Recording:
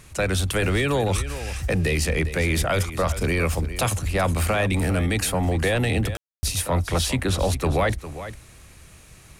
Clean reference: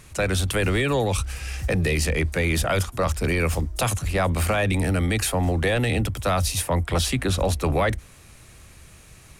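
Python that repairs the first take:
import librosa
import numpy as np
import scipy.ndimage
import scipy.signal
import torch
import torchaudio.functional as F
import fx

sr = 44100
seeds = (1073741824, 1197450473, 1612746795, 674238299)

y = fx.fix_ambience(x, sr, seeds[0], print_start_s=8.88, print_end_s=9.38, start_s=6.17, end_s=6.43)
y = fx.fix_echo_inverse(y, sr, delay_ms=404, level_db=-13.0)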